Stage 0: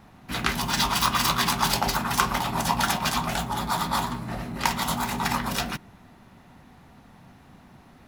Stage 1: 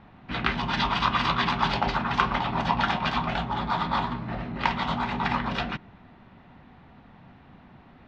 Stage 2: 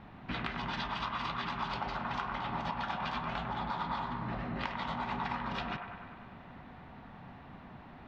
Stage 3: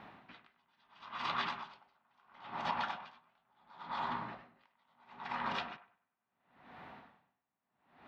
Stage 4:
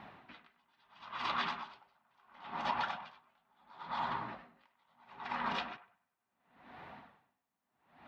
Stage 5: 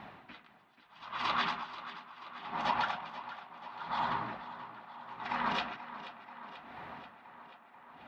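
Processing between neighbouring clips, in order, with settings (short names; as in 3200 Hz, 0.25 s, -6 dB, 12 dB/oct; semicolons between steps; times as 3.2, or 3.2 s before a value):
LPF 3600 Hz 24 dB/oct
compressor 12:1, threshold -34 dBFS, peak gain reduction 18 dB; band-limited delay 98 ms, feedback 71%, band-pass 1000 Hz, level -4.5 dB
HPF 480 Hz 6 dB/oct; dB-linear tremolo 0.73 Hz, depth 40 dB; gain +3 dB
flange 1 Hz, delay 0.9 ms, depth 3.8 ms, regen -52%; gain +5 dB
tape echo 0.485 s, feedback 77%, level -12.5 dB, low-pass 5400 Hz; gain +3.5 dB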